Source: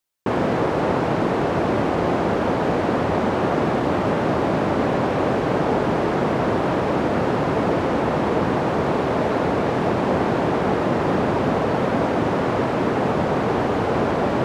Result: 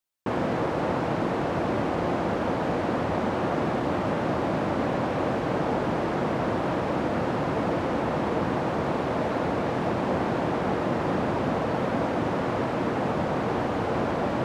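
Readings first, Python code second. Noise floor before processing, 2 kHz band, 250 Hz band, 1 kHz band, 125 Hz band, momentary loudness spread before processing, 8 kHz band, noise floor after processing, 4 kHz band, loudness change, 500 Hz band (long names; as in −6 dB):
−22 dBFS, −5.5 dB, −5.5 dB, −5.5 dB, −5.5 dB, 1 LU, can't be measured, −28 dBFS, −5.5 dB, −6.0 dB, −6.5 dB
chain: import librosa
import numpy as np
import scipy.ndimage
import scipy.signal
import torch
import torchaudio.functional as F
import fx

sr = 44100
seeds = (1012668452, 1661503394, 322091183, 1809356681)

y = fx.notch(x, sr, hz=410.0, q=12.0)
y = y * 10.0 ** (-5.5 / 20.0)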